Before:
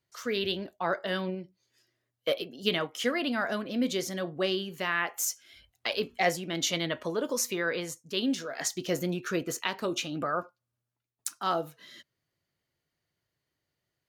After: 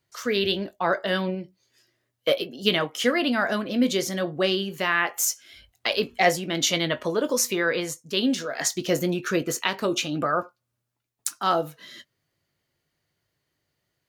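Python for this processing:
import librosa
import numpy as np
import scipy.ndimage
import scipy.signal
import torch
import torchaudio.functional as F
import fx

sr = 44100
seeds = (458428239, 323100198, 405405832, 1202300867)

y = fx.doubler(x, sr, ms=20.0, db=-13.5)
y = y * 10.0 ** (6.0 / 20.0)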